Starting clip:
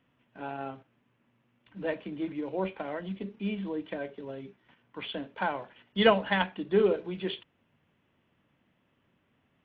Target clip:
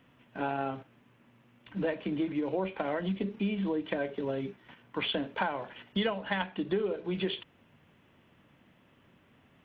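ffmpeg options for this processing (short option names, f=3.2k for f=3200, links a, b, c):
-af "acompressor=threshold=-36dB:ratio=10,volume=8.5dB"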